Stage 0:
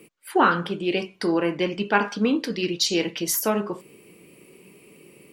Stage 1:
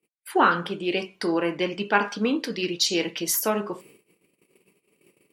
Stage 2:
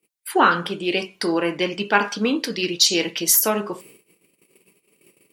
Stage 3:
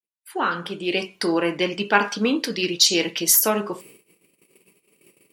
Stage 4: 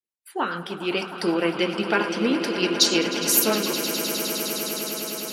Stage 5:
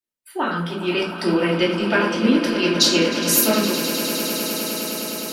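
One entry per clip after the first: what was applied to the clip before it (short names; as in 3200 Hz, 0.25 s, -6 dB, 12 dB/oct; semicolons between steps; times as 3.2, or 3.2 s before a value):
low shelf 270 Hz -5.5 dB; gate -49 dBFS, range -32 dB
high shelf 3600 Hz +7 dB; gain +2.5 dB
opening faded in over 1.06 s
rotary speaker horn 6.7 Hz; swelling echo 0.103 s, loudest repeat 8, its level -14 dB
shoebox room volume 380 m³, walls furnished, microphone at 2.7 m; gain -1 dB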